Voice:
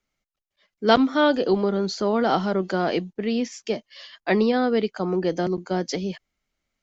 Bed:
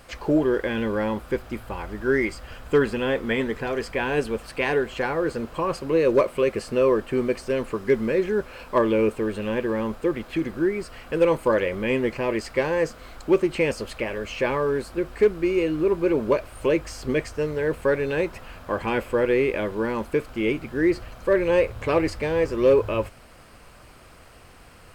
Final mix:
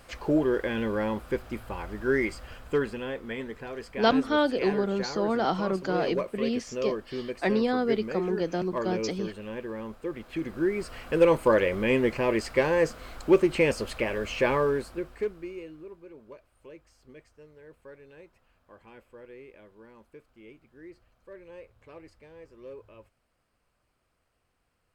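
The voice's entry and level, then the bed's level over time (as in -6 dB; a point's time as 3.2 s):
3.15 s, -5.0 dB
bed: 2.44 s -3.5 dB
3.16 s -11 dB
10.01 s -11 dB
10.92 s -0.5 dB
14.61 s -0.5 dB
16.07 s -26.5 dB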